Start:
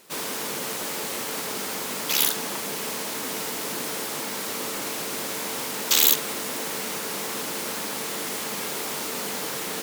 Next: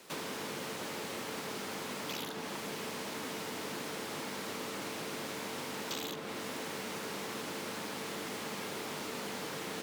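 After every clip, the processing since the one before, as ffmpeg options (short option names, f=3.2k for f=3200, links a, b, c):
-filter_complex "[0:a]acrossover=split=120|360|1300|4600[a][b][c][d][e];[a]acompressor=threshold=-58dB:ratio=4[f];[b]acompressor=threshold=-46dB:ratio=4[g];[c]acompressor=threshold=-45dB:ratio=4[h];[d]acompressor=threshold=-45dB:ratio=4[i];[e]acompressor=threshold=-45dB:ratio=4[j];[f][g][h][i][j]amix=inputs=5:normalize=0,highshelf=f=8.9k:g=-9"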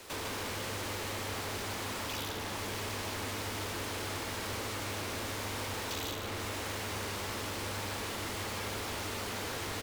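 -af "asoftclip=type=tanh:threshold=-39.5dB,lowshelf=f=120:t=q:w=3:g=10,aecho=1:1:150:0.501,volume=5.5dB"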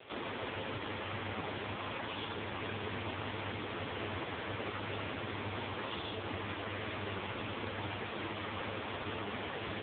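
-af "volume=4dB" -ar 8000 -c:a libopencore_amrnb -b:a 5150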